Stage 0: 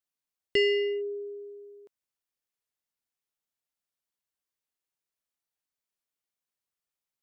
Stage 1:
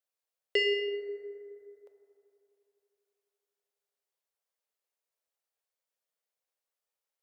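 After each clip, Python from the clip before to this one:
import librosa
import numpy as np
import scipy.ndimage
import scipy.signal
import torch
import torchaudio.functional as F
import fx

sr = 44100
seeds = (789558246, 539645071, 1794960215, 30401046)

y = fx.low_shelf_res(x, sr, hz=340.0, db=-13.5, q=3.0)
y = fx.rev_fdn(y, sr, rt60_s=3.0, lf_ratio=1.0, hf_ratio=0.3, size_ms=22.0, drr_db=6.0)
y = y * 10.0 ** (-2.0 / 20.0)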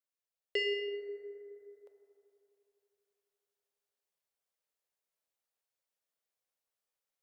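y = fx.rider(x, sr, range_db=3, speed_s=2.0)
y = y * 10.0 ** (-4.5 / 20.0)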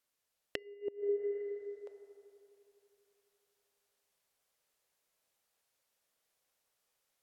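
y = fx.env_lowpass_down(x, sr, base_hz=860.0, full_db=-39.5)
y = fx.gate_flip(y, sr, shuts_db=-33.0, range_db=-26)
y = y * 10.0 ** (10.0 / 20.0)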